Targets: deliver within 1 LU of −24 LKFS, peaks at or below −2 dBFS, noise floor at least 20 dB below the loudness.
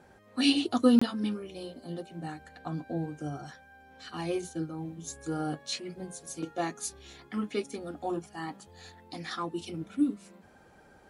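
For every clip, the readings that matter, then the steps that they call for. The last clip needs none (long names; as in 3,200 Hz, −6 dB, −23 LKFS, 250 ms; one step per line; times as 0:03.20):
number of dropouts 1; longest dropout 25 ms; integrated loudness −32.5 LKFS; sample peak −11.0 dBFS; target loudness −24.0 LKFS
→ repair the gap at 0:00.99, 25 ms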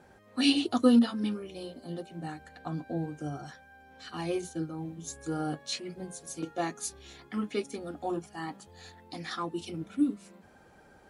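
number of dropouts 0; integrated loudness −32.5 LKFS; sample peak −11.0 dBFS; target loudness −24.0 LKFS
→ level +8.5 dB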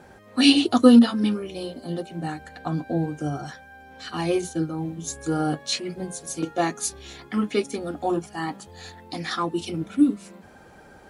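integrated loudness −24.0 LKFS; sample peak −2.5 dBFS; background noise floor −49 dBFS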